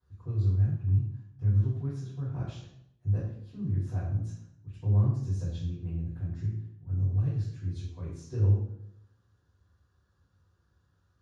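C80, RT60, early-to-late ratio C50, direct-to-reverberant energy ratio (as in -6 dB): 5.5 dB, 0.75 s, 2.0 dB, -13.5 dB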